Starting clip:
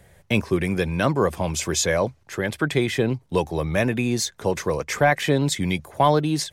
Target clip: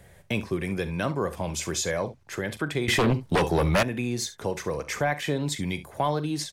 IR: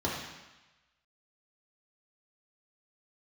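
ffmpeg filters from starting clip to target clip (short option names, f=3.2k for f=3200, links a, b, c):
-filter_complex "[0:a]aecho=1:1:41|68:0.178|0.141,asettb=1/sr,asplit=3[a][b][c];[a]atrim=end=2.884[d];[b]atrim=start=2.88:end=3.83,asetpts=PTS-STARTPTS,afade=t=in:d=0.004:c=qsin,afade=t=out:st=0.946:d=0.004:c=qsin,aeval=exprs='0.398*sin(PI/2*3.16*val(0)/0.398)':c=same[e];[c]atrim=start=3.826[f];[d][e]acrossfade=d=0.004:c1=hsin:c2=qsin[g];[g][f]acrossfade=d=0.004:c1=qsin:c2=hsin,acompressor=threshold=-36dB:ratio=1.5"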